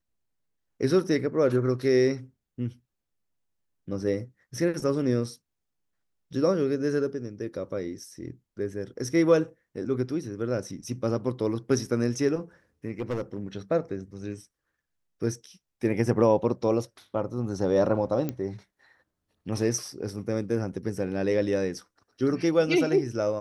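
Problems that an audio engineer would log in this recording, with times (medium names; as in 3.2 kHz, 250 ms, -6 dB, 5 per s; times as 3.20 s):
12.99–13.39 s: clipped -25 dBFS
18.29 s: pop -17 dBFS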